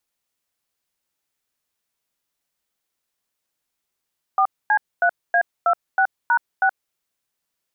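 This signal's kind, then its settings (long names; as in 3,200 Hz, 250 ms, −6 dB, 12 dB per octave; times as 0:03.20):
touch tones "4C3A26#6", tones 74 ms, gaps 246 ms, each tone −16.5 dBFS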